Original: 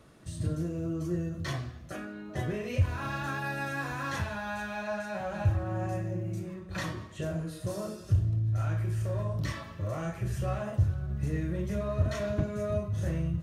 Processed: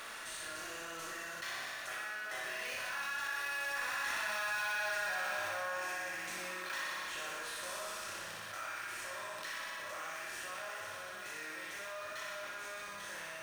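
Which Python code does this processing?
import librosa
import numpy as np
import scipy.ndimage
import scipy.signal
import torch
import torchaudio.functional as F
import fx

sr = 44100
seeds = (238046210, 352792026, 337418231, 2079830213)

p1 = fx.bin_compress(x, sr, power=0.6)
p2 = fx.doppler_pass(p1, sr, speed_mps=6, closest_m=2.9, pass_at_s=4.77)
p3 = scipy.signal.sosfilt(scipy.signal.butter(2, 1500.0, 'highpass', fs=sr, output='sos'), p2)
p4 = fx.sample_hold(p3, sr, seeds[0], rate_hz=7200.0, jitter_pct=0)
p5 = p3 + F.gain(torch.from_numpy(p4), -6.0).numpy()
p6 = fx.chorus_voices(p5, sr, voices=6, hz=0.15, base_ms=25, depth_ms=5.0, mix_pct=35)
p7 = p6 + fx.room_flutter(p6, sr, wall_m=10.4, rt60_s=0.96, dry=0)
y = fx.env_flatten(p7, sr, amount_pct=70)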